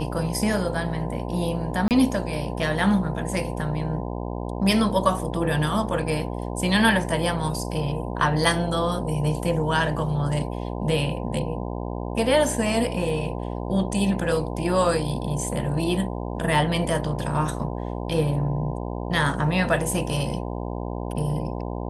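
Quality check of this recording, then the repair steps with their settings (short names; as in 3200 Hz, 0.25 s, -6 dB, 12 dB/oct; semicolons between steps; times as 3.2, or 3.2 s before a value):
buzz 60 Hz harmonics 17 -30 dBFS
1.88–1.91 gap 28 ms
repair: de-hum 60 Hz, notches 17; interpolate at 1.88, 28 ms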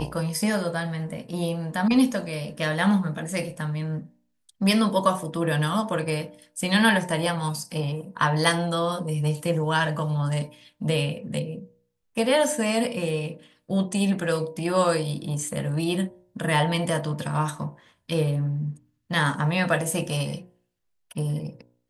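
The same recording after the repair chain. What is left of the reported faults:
none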